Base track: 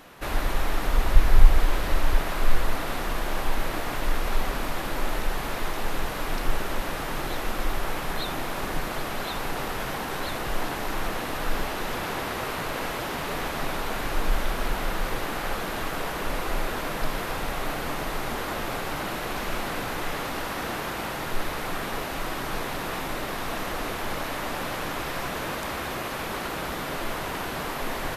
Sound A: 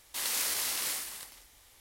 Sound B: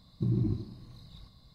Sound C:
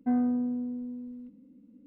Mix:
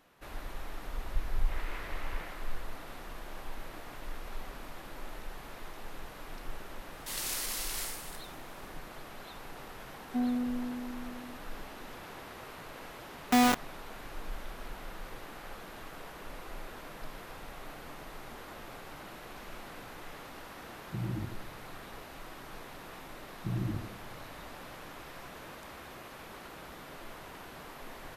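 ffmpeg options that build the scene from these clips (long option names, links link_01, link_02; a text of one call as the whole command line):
ffmpeg -i bed.wav -i cue0.wav -i cue1.wav -i cue2.wav -filter_complex "[1:a]asplit=2[link_01][link_02];[3:a]asplit=2[link_03][link_04];[2:a]asplit=2[link_05][link_06];[0:a]volume=-16dB[link_07];[link_01]lowpass=frequency=2200:width=0.5412,lowpass=frequency=2200:width=1.3066[link_08];[link_04]acrusher=bits=3:mix=0:aa=0.000001[link_09];[link_08]atrim=end=1.8,asetpts=PTS-STARTPTS,volume=-3dB,afade=type=in:duration=0.004:curve=hsin,afade=type=out:start_time=1.796:duration=0.004:curve=hsin,adelay=1340[link_10];[link_02]atrim=end=1.8,asetpts=PTS-STARTPTS,volume=-4.5dB,afade=type=in:duration=0.004:curve=hsin,afade=type=out:start_time=1.796:duration=0.004:curve=hsin,adelay=6920[link_11];[link_03]atrim=end=1.86,asetpts=PTS-STARTPTS,volume=-4.5dB,afade=type=in:duration=0.004:curve=hsin,afade=type=out:start_time=1.856:duration=0.004:curve=hsin,adelay=10080[link_12];[link_09]atrim=end=1.86,asetpts=PTS-STARTPTS,afade=type=in:duration=0.004:curve=hsin,afade=type=out:start_time=1.856:duration=0.004:curve=hsin,adelay=13250[link_13];[link_05]atrim=end=1.54,asetpts=PTS-STARTPTS,volume=-7.5dB,afade=type=in:duration=0.004:curve=hsin,afade=type=out:start_time=1.536:duration=0.004:curve=hsin,adelay=20720[link_14];[link_06]atrim=end=1.54,asetpts=PTS-STARTPTS,volume=-5.5dB,afade=type=in:duration=0.004:curve=hsin,afade=type=out:start_time=1.536:duration=0.004:curve=hsin,adelay=1024884S[link_15];[link_07][link_10][link_11][link_12][link_13][link_14][link_15]amix=inputs=7:normalize=0" out.wav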